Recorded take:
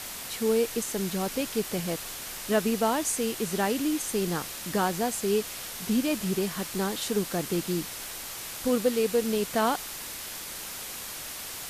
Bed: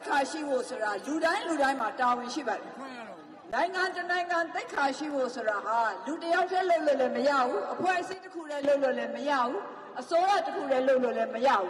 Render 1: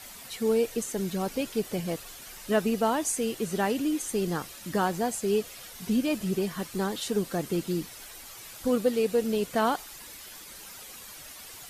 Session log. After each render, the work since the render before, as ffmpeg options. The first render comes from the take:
-af "afftdn=nr=10:nf=-39"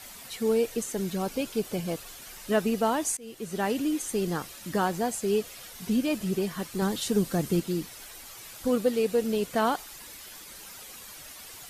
-filter_complex "[0:a]asettb=1/sr,asplit=3[s0][s1][s2];[s0]atrim=end=1.214[s3];[s1]atrim=start=1.21:end=2,asetpts=PTS-STARTPTS,afade=t=in:d=0.004:c=qsin,afade=t=out:st=0.786:d=0.004:c=qsin,bandreject=f=1900:w=12[s4];[s2]atrim=start=1.996[s5];[s3][s4]acrossfade=d=0.004:c1=hsin:c2=qsin[s6];[s6][s5]acrossfade=d=0.004:c1=qsin:c2=hsin,asettb=1/sr,asplit=3[s7][s8][s9];[s7]atrim=end=6.824[s10];[s8]atrim=start=6.82:end=7.6,asetpts=PTS-STARTPTS,afade=t=in:d=0.004:c=qsin,afade=t=out:st=0.776:d=0.004:c=qsin,bass=f=250:g=7,treble=f=4000:g=3[s11];[s9]atrim=start=7.596[s12];[s10][s11]acrossfade=d=0.004:c1=hsin:c2=qsin[s13];[s13][s12]acrossfade=d=0.004:c1=qsin:c2=hsin,asplit=2[s14][s15];[s14]atrim=end=3.17,asetpts=PTS-STARTPTS,afade=t=out:st=3.166:d=0.004:c=hsin:silence=0.0630957[s16];[s15]atrim=start=3.17,asetpts=PTS-STARTPTS,afade=t=in:d=0.55:silence=0.0630957[s17];[s16][s17]concat=n=2:v=0:a=1"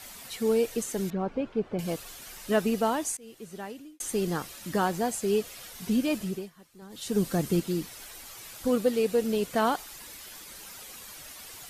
-filter_complex "[0:a]asettb=1/sr,asplit=3[s0][s1][s2];[s0]atrim=end=1.104[s3];[s1]atrim=start=1.1:end=1.79,asetpts=PTS-STARTPTS,afade=t=in:d=0.004:c=qsin,afade=t=out:st=0.686:d=0.004:c=qsin,lowpass=1600[s4];[s2]atrim=start=1.786[s5];[s3][s4]acrossfade=d=0.004:c1=hsin:c2=qsin[s6];[s6][s5]acrossfade=d=0.004:c1=qsin:c2=hsin,asplit=4[s7][s8][s9][s10];[s7]atrim=end=4,asetpts=PTS-STARTPTS,afade=t=out:st=2.76:d=1.24[s11];[s8]atrim=start=4:end=6.51,asetpts=PTS-STARTPTS,afade=t=in:d=0.004:c=hsin,afade=t=out:st=2.17:d=0.34:silence=0.0944061[s12];[s9]atrim=start=6.51:end=6.89,asetpts=PTS-STARTPTS,volume=0.0944[s13];[s10]atrim=start=6.89,asetpts=PTS-STARTPTS,afade=t=in:d=0.34:silence=0.0944061[s14];[s11][s12][s13][s14]concat=n=4:v=0:a=1"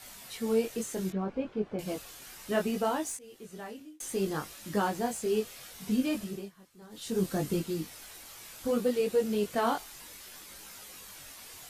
-filter_complex "[0:a]flanger=delay=19:depth=3.7:speed=0.65,acrossover=split=2800[s0][s1];[s1]asoftclip=type=tanh:threshold=0.0266[s2];[s0][s2]amix=inputs=2:normalize=0"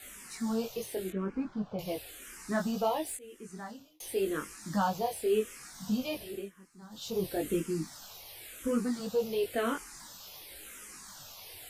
-filter_complex "[0:a]asplit=2[s0][s1];[s1]asoftclip=type=tanh:threshold=0.0422,volume=0.355[s2];[s0][s2]amix=inputs=2:normalize=0,asplit=2[s3][s4];[s4]afreqshift=-0.94[s5];[s3][s5]amix=inputs=2:normalize=1"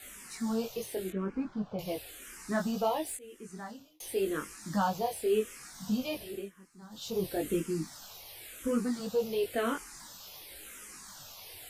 -af anull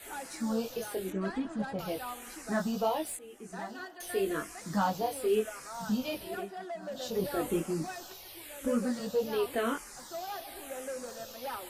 -filter_complex "[1:a]volume=0.178[s0];[0:a][s0]amix=inputs=2:normalize=0"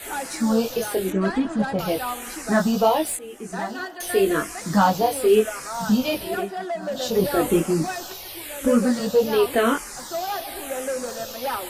-af "volume=3.76"

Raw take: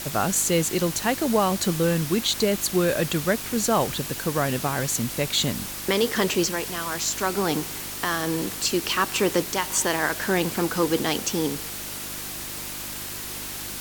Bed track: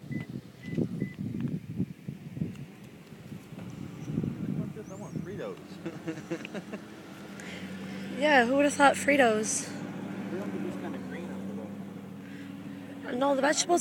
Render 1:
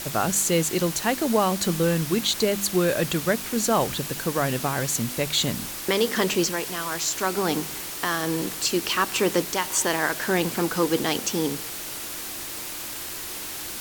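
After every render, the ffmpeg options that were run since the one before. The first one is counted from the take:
-af "bandreject=f=50:t=h:w=4,bandreject=f=100:t=h:w=4,bandreject=f=150:t=h:w=4,bandreject=f=200:t=h:w=4,bandreject=f=250:t=h:w=4"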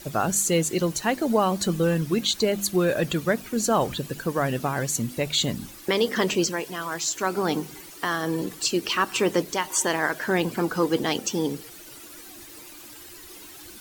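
-af "afftdn=nr=13:nf=-34"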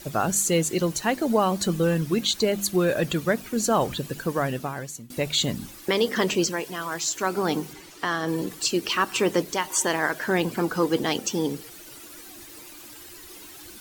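-filter_complex "[0:a]asettb=1/sr,asplit=3[s0][s1][s2];[s0]atrim=end=7.734[s3];[s1]atrim=start=7.73:end=8.28,asetpts=PTS-STARTPTS,afade=t=in:d=0.004:c=qsin,afade=t=out:st=0.546:d=0.004:c=qsin,acrossover=split=7500[s4][s5];[s5]acompressor=threshold=0.002:ratio=4:attack=1:release=60[s6];[s4][s6]amix=inputs=2:normalize=0[s7];[s2]atrim=start=8.276[s8];[s3][s7]acrossfade=d=0.004:c1=hsin:c2=qsin[s9];[s9][s8]acrossfade=d=0.004:c1=qsin:c2=hsin,asplit=2[s10][s11];[s10]atrim=end=5.1,asetpts=PTS-STARTPTS,afade=t=out:st=4.35:d=0.75:silence=0.0794328[s12];[s11]atrim=start=5.1,asetpts=PTS-STARTPTS,afade=t=in:d=0.004:c=hsin:silence=0.0794328[s13];[s12][s13]concat=n=2:v=0:a=1"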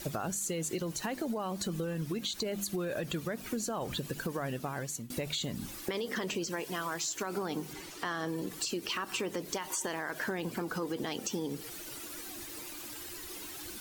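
-af "alimiter=limit=0.126:level=0:latency=1:release=61,acompressor=threshold=0.0251:ratio=6"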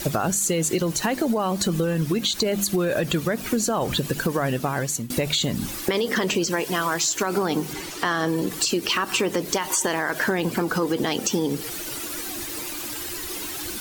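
-af "volume=3.98"

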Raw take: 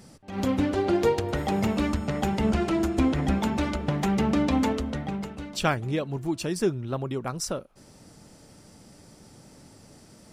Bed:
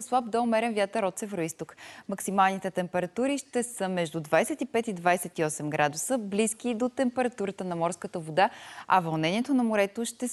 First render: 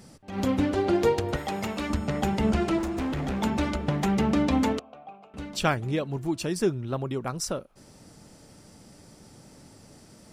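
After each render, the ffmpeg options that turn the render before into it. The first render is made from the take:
-filter_complex "[0:a]asettb=1/sr,asplit=3[s0][s1][s2];[s0]atrim=end=1.364[s3];[s1]atrim=start=1.36:end=1.9,asetpts=PTS-STARTPTS,afade=t=in:d=0.004:c=qsin,afade=t=out:st=0.536:d=0.004:c=qsin,lowshelf=f=470:g=-9.5[s4];[s2]atrim=start=1.896[s5];[s3][s4]acrossfade=d=0.004:c1=hsin:c2=qsin[s6];[s6][s5]acrossfade=d=0.004:c1=qsin:c2=hsin,asettb=1/sr,asplit=3[s7][s8][s9];[s7]atrim=end=2.784[s10];[s8]atrim=start=2.78:end=3.41,asetpts=PTS-STARTPTS,afade=t=in:d=0.004:c=qsin,afade=t=out:st=0.626:d=0.004:c=qsin,volume=22.4,asoftclip=hard,volume=0.0447[s11];[s9]atrim=start=3.406[s12];[s10][s11]acrossfade=d=0.004:c1=hsin:c2=qsin[s13];[s13][s12]acrossfade=d=0.004:c1=qsin:c2=hsin,asettb=1/sr,asplit=3[s14][s15][s16];[s14]atrim=end=4.794[s17];[s15]atrim=start=4.79:end=5.34,asetpts=PTS-STARTPTS,afade=t=in:d=0.004:c=qsin,afade=t=out:st=0.546:d=0.004:c=qsin,asplit=3[s18][s19][s20];[s18]bandpass=f=730:t=q:w=8,volume=1[s21];[s19]bandpass=f=1090:t=q:w=8,volume=0.501[s22];[s20]bandpass=f=2440:t=q:w=8,volume=0.355[s23];[s21][s22][s23]amix=inputs=3:normalize=0[s24];[s16]atrim=start=5.336[s25];[s17][s24]acrossfade=d=0.004:c1=hsin:c2=qsin[s26];[s26][s25]acrossfade=d=0.004:c1=qsin:c2=hsin"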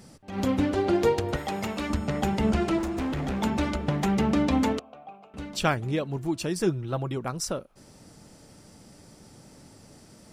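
-filter_complex "[0:a]asettb=1/sr,asplit=3[s0][s1][s2];[s0]atrim=end=6.594[s3];[s1]atrim=start=6.59:end=7.17,asetpts=PTS-STARTPTS,afade=t=in:d=0.004:c=qsin,afade=t=out:st=0.576:d=0.004:c=qsin,aecho=1:1:6.1:0.45,atrim=end_sample=25578[s4];[s2]atrim=start=7.166[s5];[s3][s4]acrossfade=d=0.004:c1=hsin:c2=qsin[s6];[s6][s5]acrossfade=d=0.004:c1=qsin:c2=hsin"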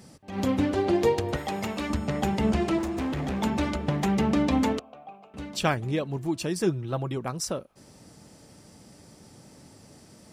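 -af "highpass=51,bandreject=f=1400:w=18"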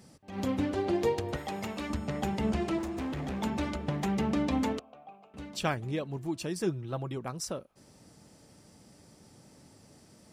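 -af "volume=0.531"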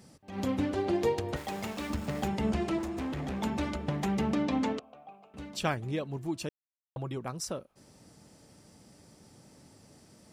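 -filter_complex "[0:a]asettb=1/sr,asplit=3[s0][s1][s2];[s0]atrim=end=1.364[s3];[s1]atrim=start=1.36:end=2.28,asetpts=PTS-STARTPTS,afade=t=in:d=0.004:c=qsin,afade=t=out:st=0.916:d=0.004:c=qsin,aeval=exprs='val(0)*gte(abs(val(0)),0.00794)':c=same[s4];[s2]atrim=start=2.276[s5];[s3][s4]acrossfade=d=0.004:c1=hsin:c2=qsin[s6];[s6][s5]acrossfade=d=0.004:c1=qsin:c2=hsin,asettb=1/sr,asplit=3[s7][s8][s9];[s7]atrim=end=4.354[s10];[s8]atrim=start=4.35:end=4.83,asetpts=PTS-STARTPTS,afade=t=in:d=0.004:c=qsin,afade=t=out:st=0.476:d=0.004:c=qsin,highpass=120,lowpass=6600[s11];[s9]atrim=start=4.826[s12];[s10][s11]acrossfade=d=0.004:c1=hsin:c2=qsin[s13];[s13][s12]acrossfade=d=0.004:c1=qsin:c2=hsin,asplit=3[s14][s15][s16];[s14]atrim=end=6.49,asetpts=PTS-STARTPTS,afade=t=out:st=6.486:d=0.004:c=hsin[s17];[s15]atrim=start=6.49:end=6.96,asetpts=PTS-STARTPTS,volume=0[s18];[s16]atrim=start=6.96,asetpts=PTS-STARTPTS,afade=t=in:d=0.004:c=hsin[s19];[s17][s18][s19]concat=n=3:v=0:a=1"

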